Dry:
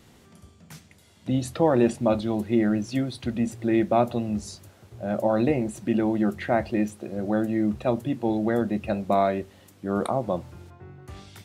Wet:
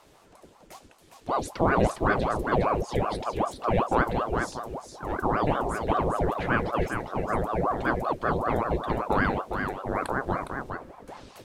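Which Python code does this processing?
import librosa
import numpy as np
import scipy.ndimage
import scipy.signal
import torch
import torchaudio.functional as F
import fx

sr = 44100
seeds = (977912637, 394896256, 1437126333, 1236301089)

y = x + 10.0 ** (-5.5 / 20.0) * np.pad(x, (int(410 * sr / 1000.0), 0))[:len(x)]
y = fx.ring_lfo(y, sr, carrier_hz=550.0, swing_pct=75, hz=5.2)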